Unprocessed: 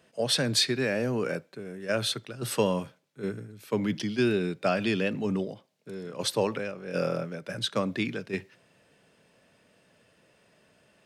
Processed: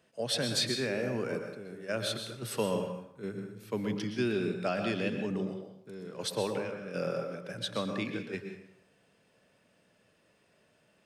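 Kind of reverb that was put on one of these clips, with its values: plate-style reverb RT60 0.7 s, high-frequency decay 0.7×, pre-delay 0.105 s, DRR 5 dB; gain -6 dB

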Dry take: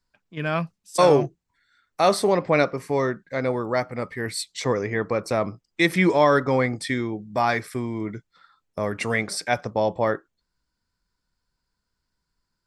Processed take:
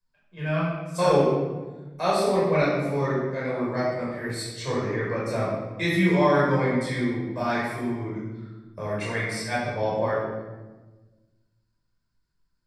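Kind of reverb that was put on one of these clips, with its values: shoebox room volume 790 m³, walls mixed, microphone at 5.3 m; gain -13.5 dB

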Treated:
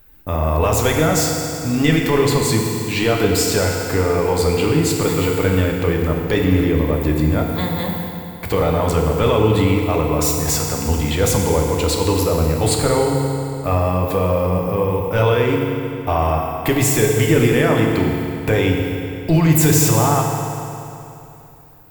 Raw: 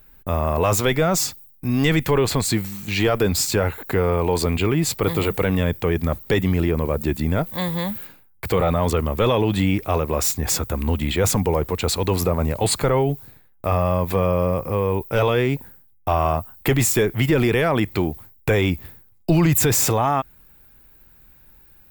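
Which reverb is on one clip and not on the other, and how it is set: FDN reverb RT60 2.9 s, high-frequency decay 0.85×, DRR 0 dB

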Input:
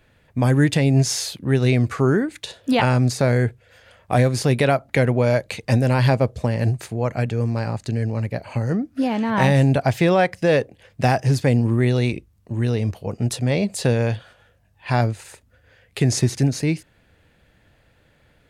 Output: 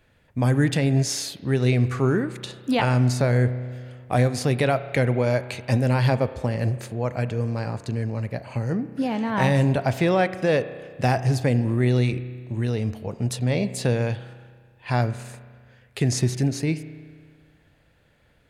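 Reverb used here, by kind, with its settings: spring tank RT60 1.8 s, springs 32 ms, chirp 55 ms, DRR 12.5 dB; gain -3.5 dB

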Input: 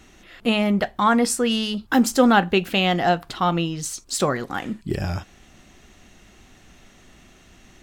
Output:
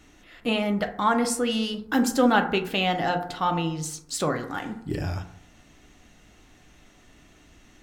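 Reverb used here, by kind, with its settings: FDN reverb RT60 0.69 s, low-frequency decay 1×, high-frequency decay 0.35×, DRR 5 dB; gain -5 dB

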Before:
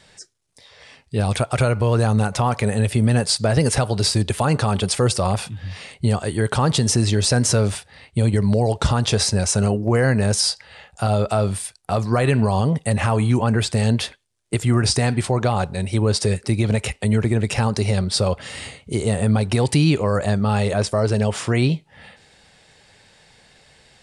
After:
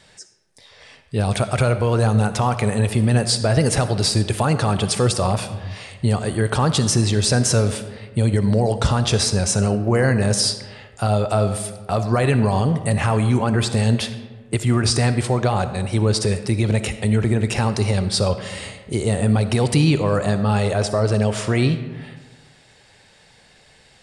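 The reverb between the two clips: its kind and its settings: digital reverb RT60 1.5 s, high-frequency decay 0.5×, pre-delay 20 ms, DRR 10.5 dB

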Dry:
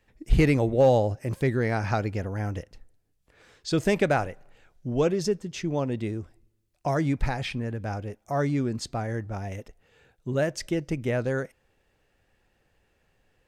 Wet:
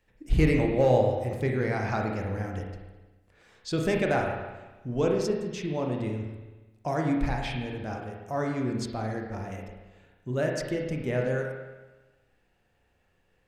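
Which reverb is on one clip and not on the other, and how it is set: spring tank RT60 1.2 s, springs 32/46 ms, chirp 25 ms, DRR 0.5 dB; gain -4 dB

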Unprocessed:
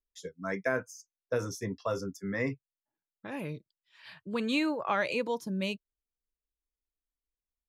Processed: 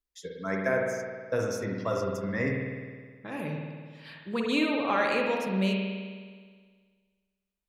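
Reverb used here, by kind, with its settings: spring tank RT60 1.7 s, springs 52 ms, chirp 25 ms, DRR 0 dB; gain +1 dB

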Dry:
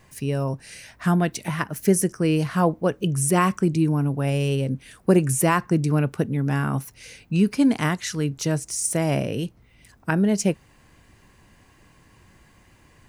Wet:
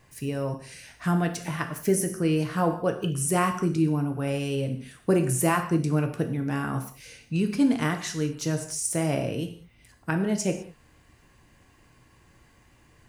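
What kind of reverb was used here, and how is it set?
non-linear reverb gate 0.23 s falling, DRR 5 dB; gain -4.5 dB

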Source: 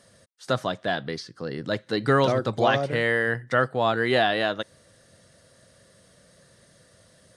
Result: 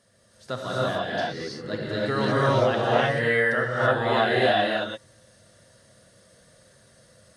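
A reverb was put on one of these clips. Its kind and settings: non-linear reverb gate 0.36 s rising, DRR -7.5 dB; gain -7.5 dB

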